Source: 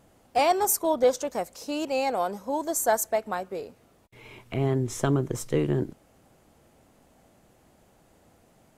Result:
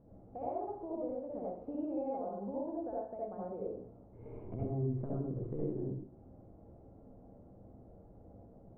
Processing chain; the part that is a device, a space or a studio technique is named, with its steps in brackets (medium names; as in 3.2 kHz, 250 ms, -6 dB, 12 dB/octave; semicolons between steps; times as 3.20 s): Bessel low-pass 1.9 kHz; treble shelf 3.4 kHz -8.5 dB; television next door (compression 4:1, threshold -40 dBFS, peak gain reduction 19 dB; low-pass 520 Hz 12 dB/octave; reverberation RT60 0.55 s, pre-delay 60 ms, DRR -5 dB); band-passed feedback delay 69 ms, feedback 75%, band-pass 980 Hz, level -15 dB; trim -1.5 dB